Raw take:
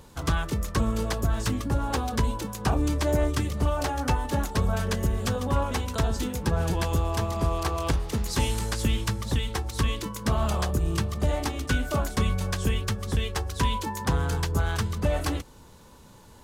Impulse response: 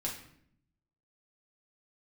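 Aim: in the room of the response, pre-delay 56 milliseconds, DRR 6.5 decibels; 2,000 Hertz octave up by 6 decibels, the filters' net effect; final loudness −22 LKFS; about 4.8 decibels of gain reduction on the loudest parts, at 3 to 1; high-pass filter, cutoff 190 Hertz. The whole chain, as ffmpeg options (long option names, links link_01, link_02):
-filter_complex "[0:a]highpass=190,equalizer=frequency=2000:width_type=o:gain=8,acompressor=threshold=-29dB:ratio=3,asplit=2[link_01][link_02];[1:a]atrim=start_sample=2205,adelay=56[link_03];[link_02][link_03]afir=irnorm=-1:irlink=0,volume=-8.5dB[link_04];[link_01][link_04]amix=inputs=2:normalize=0,volume=9.5dB"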